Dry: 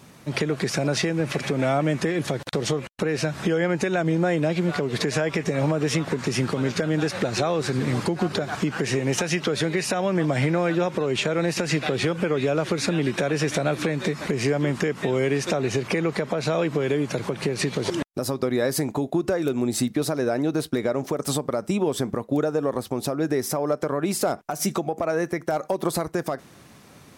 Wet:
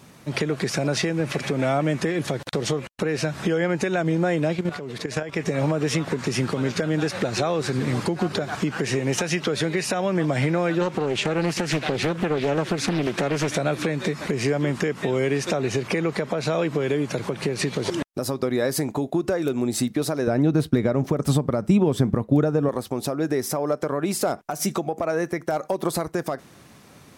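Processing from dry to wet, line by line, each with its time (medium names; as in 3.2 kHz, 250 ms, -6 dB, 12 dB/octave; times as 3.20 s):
4.55–5.37 s: level held to a coarse grid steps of 11 dB
10.81–13.48 s: loudspeaker Doppler distortion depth 0.68 ms
20.27–22.69 s: tone controls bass +11 dB, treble -5 dB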